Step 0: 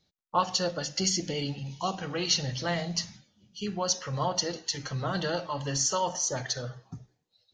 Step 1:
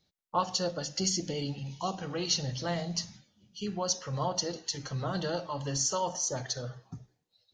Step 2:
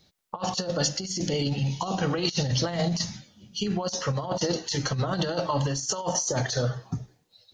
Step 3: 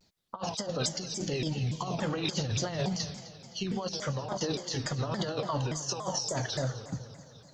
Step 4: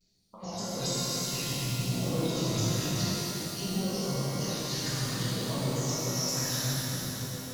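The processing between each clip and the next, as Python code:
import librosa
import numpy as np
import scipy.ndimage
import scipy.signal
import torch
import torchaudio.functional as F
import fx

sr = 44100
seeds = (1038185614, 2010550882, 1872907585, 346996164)

y1 = fx.dynamic_eq(x, sr, hz=2100.0, q=0.95, threshold_db=-45.0, ratio=4.0, max_db=-6)
y1 = y1 * librosa.db_to_amplitude(-1.5)
y2 = fx.over_compress(y1, sr, threshold_db=-35.0, ratio=-0.5)
y2 = y2 * librosa.db_to_amplitude(9.0)
y3 = fx.echo_heads(y2, sr, ms=86, heads='second and third', feedback_pct=64, wet_db=-17)
y3 = fx.vibrato_shape(y3, sr, shape='saw_down', rate_hz=3.5, depth_cents=250.0)
y3 = y3 * librosa.db_to_amplitude(-5.5)
y4 = fx.phaser_stages(y3, sr, stages=2, low_hz=430.0, high_hz=1800.0, hz=0.57, feedback_pct=25)
y4 = fx.rev_shimmer(y4, sr, seeds[0], rt60_s=3.9, semitones=12, shimmer_db=-8, drr_db=-10.5)
y4 = y4 * librosa.db_to_amplitude(-7.5)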